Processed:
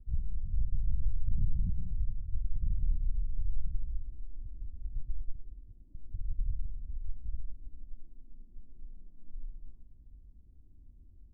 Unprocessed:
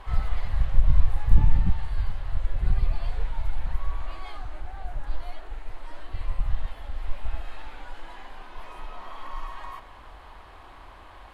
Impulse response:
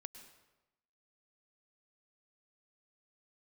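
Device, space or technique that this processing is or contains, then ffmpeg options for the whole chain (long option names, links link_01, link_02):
club heard from the street: -filter_complex "[0:a]asettb=1/sr,asplit=3[link_01][link_02][link_03];[link_01]atrim=end=5.354[link_04];[link_02]atrim=start=5.35:end=5.95,asetpts=PTS-STARTPTS,afade=type=in:duration=0.004:curve=qsin,afade=type=out:start_time=0.596:duration=0.004:curve=qsin,highpass=46[link_05];[link_03]atrim=start=5.946[link_06];[link_04][link_05]acrossfade=duration=0.004:curve1=hsin:curve2=qsin[link_07];[link_07][link_06]acrossfade=duration=0.004:curve1=qsin:curve2=hsin,alimiter=limit=-15.5dB:level=0:latency=1:release=53,lowpass=frequency=230:width=0.5412,lowpass=frequency=230:width=1.3066[link_08];[1:a]atrim=start_sample=2205[link_09];[link_08][link_09]afir=irnorm=-1:irlink=0"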